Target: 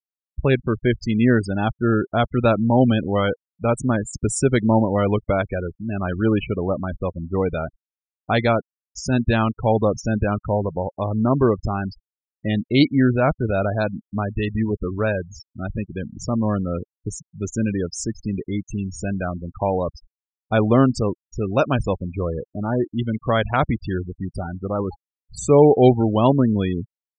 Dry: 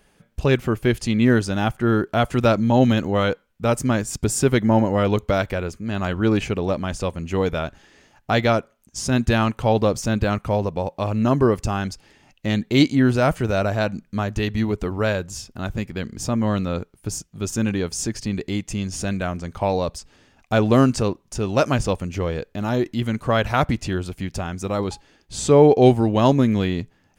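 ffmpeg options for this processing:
-af "acrusher=bits=7:mix=0:aa=0.5,afftfilt=real='re*gte(hypot(re,im),0.0708)':imag='im*gte(hypot(re,im),0.0708)':win_size=1024:overlap=0.75"

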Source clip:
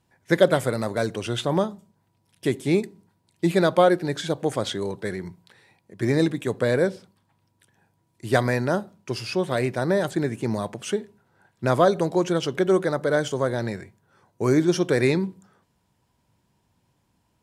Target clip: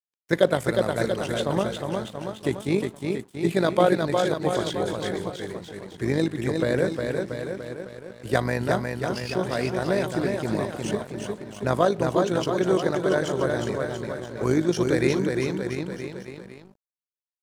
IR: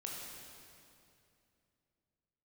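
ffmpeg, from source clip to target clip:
-af "tremolo=f=51:d=0.571,aecho=1:1:360|684|975.6|1238|1474:0.631|0.398|0.251|0.158|0.1,aeval=exprs='sgn(val(0))*max(abs(val(0))-0.00299,0)':c=same"

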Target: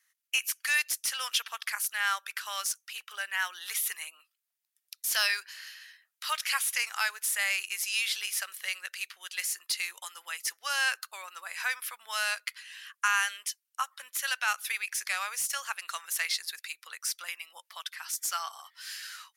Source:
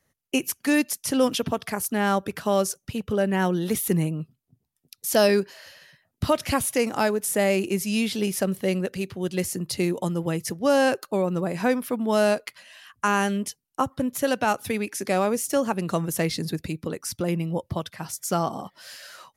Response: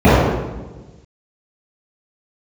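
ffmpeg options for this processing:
-filter_complex "[0:a]acrossover=split=5100[a][b];[a]highpass=f=1.4k:w=0.5412,highpass=f=1.4k:w=1.3066[c];[b]asoftclip=type=tanh:threshold=-29.5dB[d];[c][d]amix=inputs=2:normalize=0,volume=2.5dB"

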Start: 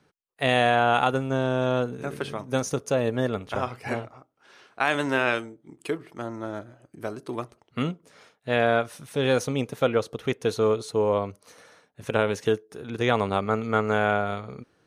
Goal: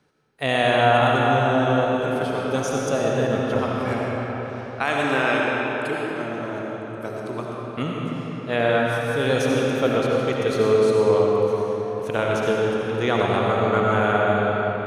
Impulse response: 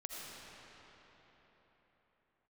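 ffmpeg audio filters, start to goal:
-filter_complex "[1:a]atrim=start_sample=2205[a];[0:a][a]afir=irnorm=-1:irlink=0,volume=5dB"

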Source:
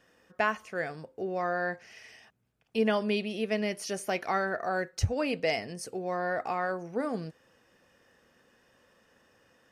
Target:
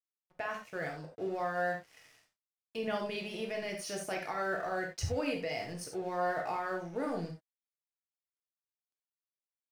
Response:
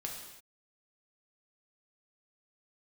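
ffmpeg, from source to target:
-filter_complex "[0:a]aeval=exprs='sgn(val(0))*max(abs(val(0))-0.00266,0)':c=same,alimiter=level_in=0.5dB:limit=-24dB:level=0:latency=1:release=25,volume=-0.5dB[a];[1:a]atrim=start_sample=2205,atrim=end_sample=4410[b];[a][b]afir=irnorm=-1:irlink=0"

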